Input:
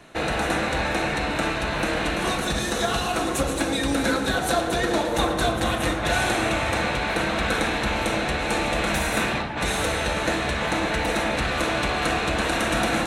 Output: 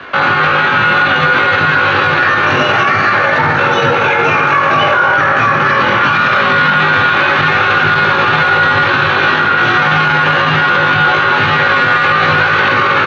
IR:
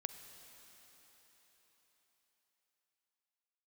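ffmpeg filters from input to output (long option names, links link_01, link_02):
-filter_complex "[0:a]lowpass=frequency=2200:width=0.5412,lowpass=frequency=2200:width=1.3066,equalizer=frequency=910:width=2.6:gain=15,areverse,acompressor=mode=upward:threshold=-24dB:ratio=2.5,areverse,asetrate=70004,aresample=44100,atempo=0.629961,afreqshift=40,aecho=1:1:20|71:0.708|0.398[link_01];[1:a]atrim=start_sample=2205,asetrate=48510,aresample=44100[link_02];[link_01][link_02]afir=irnorm=-1:irlink=0,alimiter=level_in=18dB:limit=-1dB:release=50:level=0:latency=1,volume=-1.5dB"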